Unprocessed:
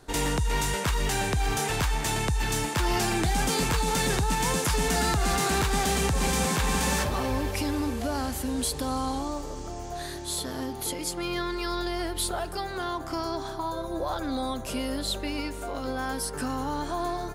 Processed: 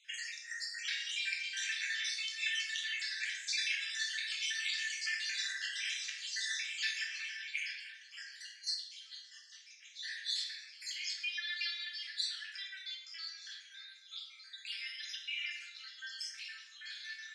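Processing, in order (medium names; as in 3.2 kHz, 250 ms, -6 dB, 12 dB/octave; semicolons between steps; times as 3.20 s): random holes in the spectrogram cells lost 62%; compression, threshold -29 dBFS, peak gain reduction 6.5 dB; steep high-pass 1.7 kHz 72 dB/octave; 7.70–9.95 s: square tremolo 2.7 Hz -> 6.9 Hz, depth 65%, duty 40%; low-pass 5.6 kHz 24 dB/octave; simulated room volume 320 m³, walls mixed, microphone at 1.5 m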